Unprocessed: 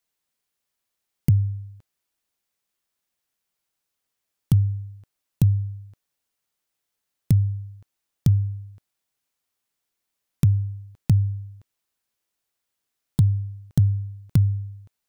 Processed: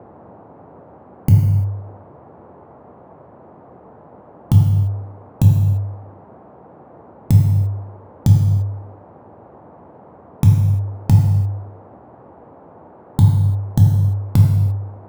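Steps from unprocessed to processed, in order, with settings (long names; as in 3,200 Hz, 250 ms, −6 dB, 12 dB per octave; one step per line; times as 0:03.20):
adaptive Wiener filter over 15 samples
parametric band 870 Hz +14.5 dB 0.35 octaves
reverb whose tail is shaped and stops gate 370 ms falling, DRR −1 dB
noise in a band 72–890 Hz −47 dBFS
level +4 dB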